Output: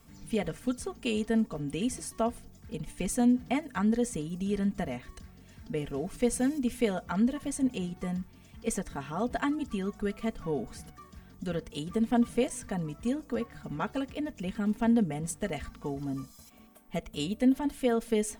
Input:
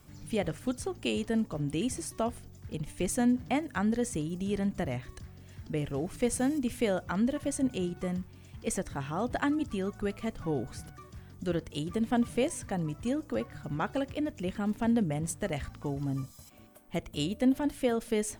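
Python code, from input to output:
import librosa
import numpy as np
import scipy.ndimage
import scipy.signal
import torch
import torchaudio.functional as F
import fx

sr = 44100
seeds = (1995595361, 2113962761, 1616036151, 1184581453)

y = x + 0.67 * np.pad(x, (int(4.4 * sr / 1000.0), 0))[:len(x)]
y = y * librosa.db_to_amplitude(-2.0)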